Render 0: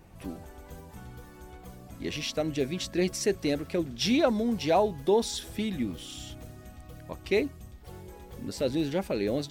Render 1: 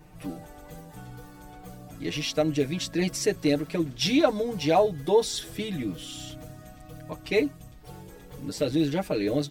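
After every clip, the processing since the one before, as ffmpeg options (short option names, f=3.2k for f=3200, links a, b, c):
-af "aecho=1:1:6.6:0.9"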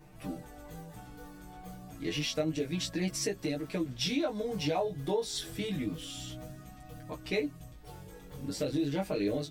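-af "acompressor=threshold=-25dB:ratio=6,flanger=delay=15:depth=6.6:speed=0.29"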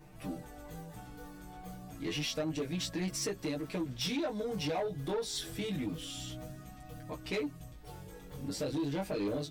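-af "asoftclip=type=tanh:threshold=-28.5dB"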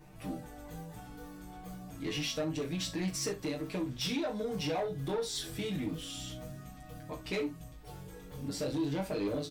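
-af "aecho=1:1:37|65:0.316|0.15"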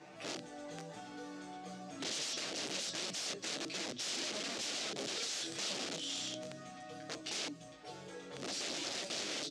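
-filter_complex "[0:a]aeval=exprs='(mod(56.2*val(0)+1,2)-1)/56.2':c=same,highpass=350,equalizer=f=440:t=q:w=4:g=-3,equalizer=f=630:t=q:w=4:g=3,equalizer=f=970:t=q:w=4:g=-5,lowpass=f=6.8k:w=0.5412,lowpass=f=6.8k:w=1.3066,acrossover=split=450|3000[a][b][c];[b]acompressor=threshold=-56dB:ratio=6[d];[a][d][c]amix=inputs=3:normalize=0,volume=6.5dB"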